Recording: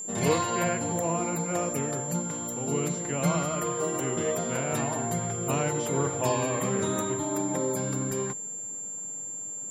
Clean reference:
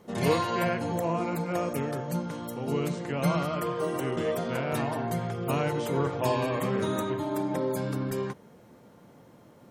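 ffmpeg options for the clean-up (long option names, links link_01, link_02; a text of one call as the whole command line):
ffmpeg -i in.wav -af "bandreject=frequency=7300:width=30" out.wav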